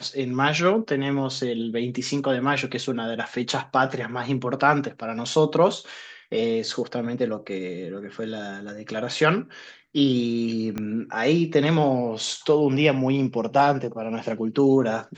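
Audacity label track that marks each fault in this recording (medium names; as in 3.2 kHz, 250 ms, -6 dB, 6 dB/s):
10.780000	10.780000	pop -16 dBFS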